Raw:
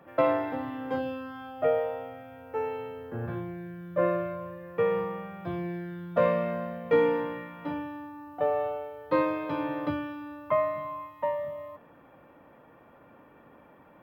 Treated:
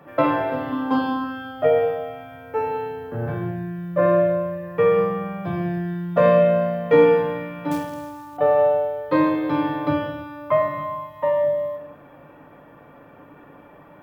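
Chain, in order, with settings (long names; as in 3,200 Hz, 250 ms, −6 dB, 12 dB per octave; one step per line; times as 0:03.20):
0:00.72–0:01.24: octave-band graphic EQ 125/250/500/1,000/2,000/4,000 Hz −10/+9/−6/+12/−8/+6 dB
on a send at −1.5 dB: convolution reverb, pre-delay 7 ms
0:07.71–0:08.37: on the sum: floating-point word with a short mantissa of 2 bits
level +5.5 dB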